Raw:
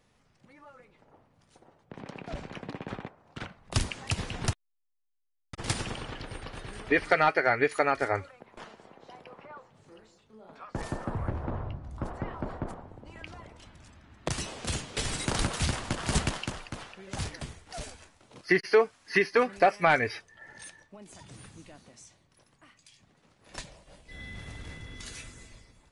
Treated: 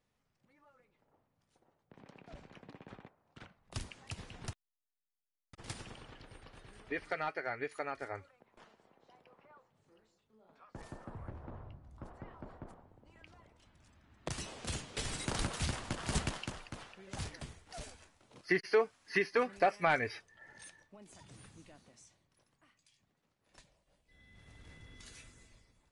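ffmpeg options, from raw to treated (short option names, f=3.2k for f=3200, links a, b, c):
-af "volume=2dB,afade=t=in:st=13.62:d=0.91:silence=0.446684,afade=t=out:st=21.67:d=1.93:silence=0.223872,afade=t=in:st=24.27:d=0.57:silence=0.354813"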